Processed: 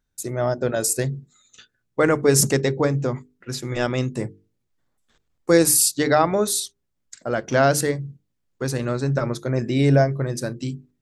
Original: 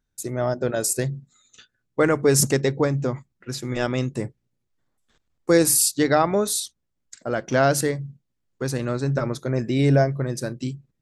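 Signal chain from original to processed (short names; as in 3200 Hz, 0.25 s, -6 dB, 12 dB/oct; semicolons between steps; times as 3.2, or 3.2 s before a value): notches 50/100/150/200/250/300/350/400/450 Hz; gain +1.5 dB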